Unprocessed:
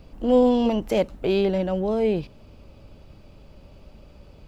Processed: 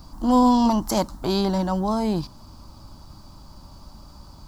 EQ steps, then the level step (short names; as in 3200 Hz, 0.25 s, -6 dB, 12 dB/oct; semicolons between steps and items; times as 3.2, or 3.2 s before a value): EQ curve 320 Hz 0 dB, 460 Hz -14 dB, 1000 Hz +11 dB, 2600 Hz -12 dB, 4600 Hz +11 dB; +3.0 dB